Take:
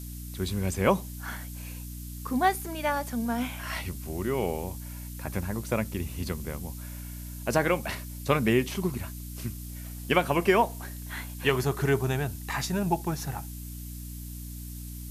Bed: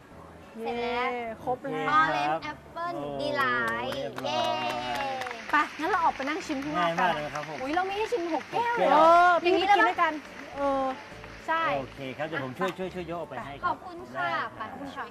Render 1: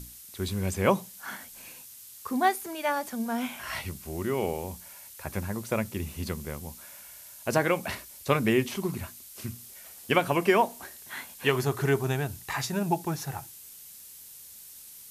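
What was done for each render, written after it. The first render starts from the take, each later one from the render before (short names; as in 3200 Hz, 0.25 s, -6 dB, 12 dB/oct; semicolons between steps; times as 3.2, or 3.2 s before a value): notches 60/120/180/240/300 Hz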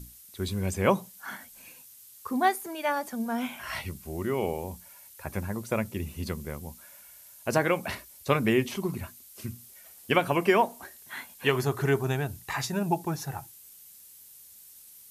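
denoiser 6 dB, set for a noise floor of -48 dBFS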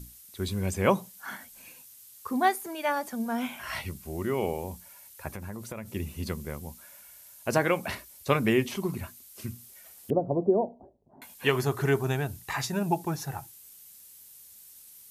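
5.28–5.95 compressor 8:1, threshold -34 dBFS; 10.1–11.22 steep low-pass 710 Hz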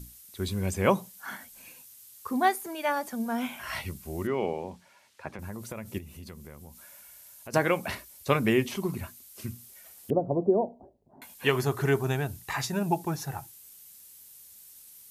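4.27–5.39 BPF 150–4100 Hz; 5.98–7.54 compressor 2.5:1, threshold -45 dBFS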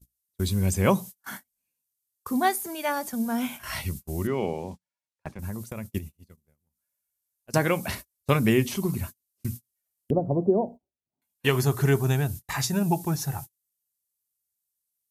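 gate -40 dBFS, range -38 dB; tone controls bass +7 dB, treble +7 dB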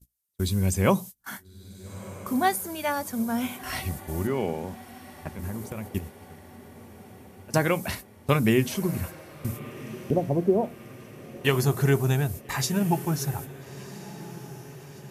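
diffused feedback echo 1.34 s, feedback 57%, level -16 dB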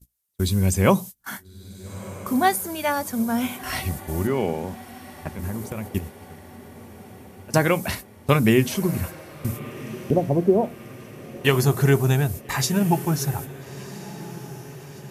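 gain +4 dB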